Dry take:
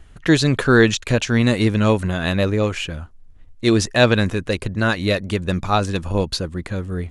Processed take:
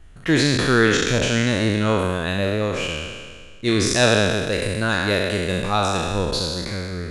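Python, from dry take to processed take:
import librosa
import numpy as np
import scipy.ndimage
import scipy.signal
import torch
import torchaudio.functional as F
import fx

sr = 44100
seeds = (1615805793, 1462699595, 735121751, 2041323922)

y = fx.spec_trails(x, sr, decay_s=1.77)
y = fx.high_shelf(y, sr, hz=5700.0, db=6.5, at=(3.86, 6.33))
y = y * 10.0 ** (-5.0 / 20.0)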